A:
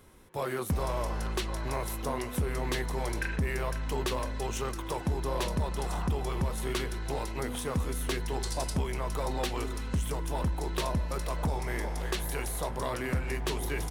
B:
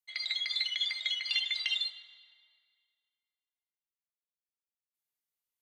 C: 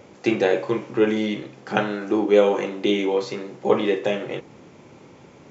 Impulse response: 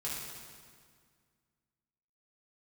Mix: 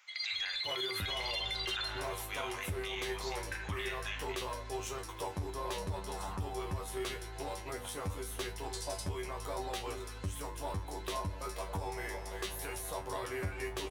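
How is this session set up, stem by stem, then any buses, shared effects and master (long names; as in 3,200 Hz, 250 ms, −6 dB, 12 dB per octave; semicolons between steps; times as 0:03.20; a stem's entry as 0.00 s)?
+3.0 dB, 0.30 s, no send, parametric band 210 Hz −9 dB 0.76 octaves; tuned comb filter 96 Hz, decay 0.19 s, harmonics all, mix 100%
0.0 dB, 0.00 s, no send, no processing
−7.0 dB, 0.00 s, no send, inverse Chebyshev high-pass filter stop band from 370 Hz, stop band 60 dB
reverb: not used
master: brickwall limiter −27.5 dBFS, peak gain reduction 11 dB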